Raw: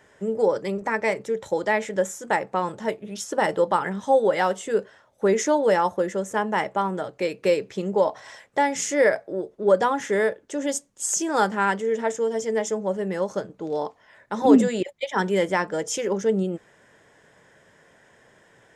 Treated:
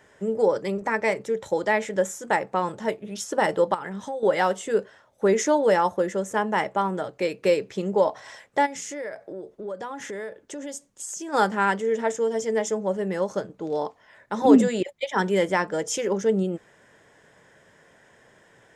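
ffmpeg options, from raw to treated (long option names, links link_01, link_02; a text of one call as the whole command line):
ffmpeg -i in.wav -filter_complex "[0:a]asettb=1/sr,asplit=3[link_01][link_02][link_03];[link_01]atrim=end=3.744[link_04];[link_02]atrim=start=3.74:end=4.23,asetpts=PTS-STARTPTS,afade=type=in:duration=0.004:curve=qsin,afade=type=out:start_time=0.486:duration=0.004:curve=qsin,acompressor=threshold=-30dB:ratio=4:attack=3.2:release=140:knee=1:detection=peak[link_05];[link_03]atrim=start=4.226[link_06];[link_04][link_05]acrossfade=duration=0.004:curve1=hsin:curve2=qsin[link_07];[link_07][link_06]acrossfade=duration=0.004:curve1=qsin:curve2=hsin,asplit=3[link_08][link_09][link_10];[link_08]afade=type=out:start_time=8.65:duration=0.02[link_11];[link_09]acompressor=threshold=-33dB:ratio=4:attack=3.2:release=140:knee=1:detection=peak,afade=type=in:start_time=8.65:duration=0.02,afade=type=out:start_time=11.32:duration=0.02[link_12];[link_10]afade=type=in:start_time=11.32:duration=0.02[link_13];[link_11][link_12][link_13]amix=inputs=3:normalize=0" out.wav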